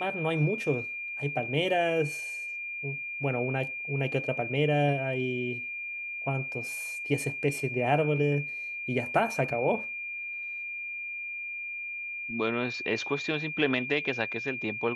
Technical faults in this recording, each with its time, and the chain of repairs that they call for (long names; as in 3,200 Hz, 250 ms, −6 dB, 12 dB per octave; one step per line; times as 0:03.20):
whistle 2,400 Hz −34 dBFS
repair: notch filter 2,400 Hz, Q 30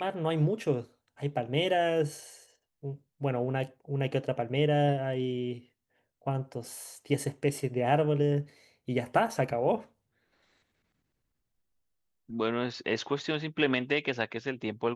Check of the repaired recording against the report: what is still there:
none of them is left